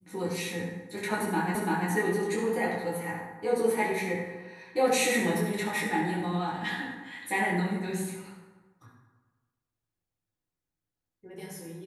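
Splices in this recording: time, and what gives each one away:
1.55 s: repeat of the last 0.34 s

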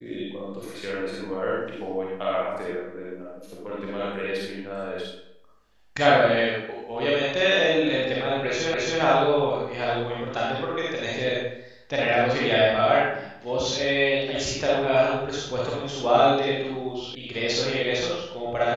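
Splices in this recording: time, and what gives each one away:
8.74 s: repeat of the last 0.27 s
17.15 s: sound stops dead

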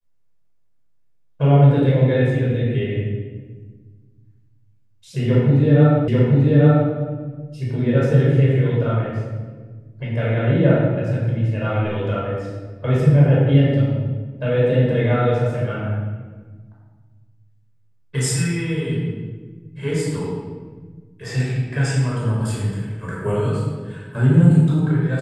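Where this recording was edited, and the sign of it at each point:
6.08 s: repeat of the last 0.84 s

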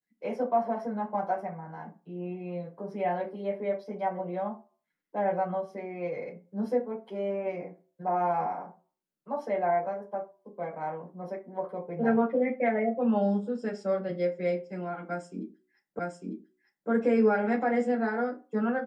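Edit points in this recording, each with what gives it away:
15.99 s: repeat of the last 0.9 s

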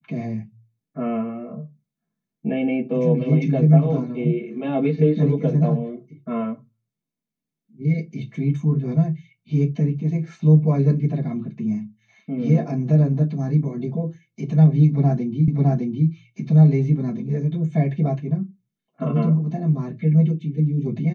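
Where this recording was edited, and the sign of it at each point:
15.48 s: repeat of the last 0.61 s

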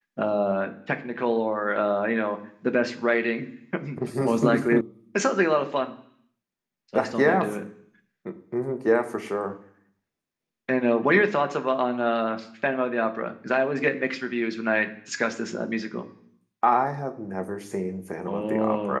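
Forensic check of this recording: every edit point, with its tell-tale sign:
4.81 s: sound stops dead

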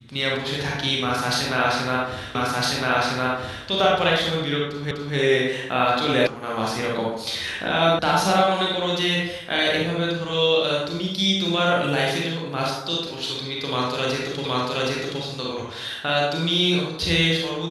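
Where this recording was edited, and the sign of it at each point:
2.35 s: repeat of the last 1.31 s
4.91 s: repeat of the last 0.25 s
6.27 s: sound stops dead
7.99 s: sound stops dead
14.45 s: repeat of the last 0.77 s

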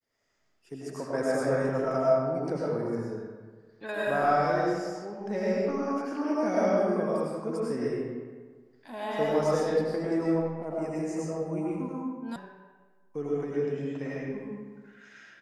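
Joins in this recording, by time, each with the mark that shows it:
12.36 s: sound stops dead

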